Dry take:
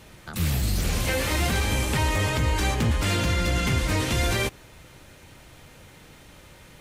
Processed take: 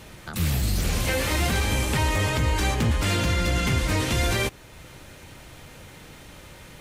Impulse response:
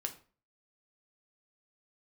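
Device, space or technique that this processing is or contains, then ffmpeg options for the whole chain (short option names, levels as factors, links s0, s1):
parallel compression: -filter_complex "[0:a]asplit=2[s0][s1];[s1]acompressor=threshold=0.00631:ratio=6,volume=0.631[s2];[s0][s2]amix=inputs=2:normalize=0"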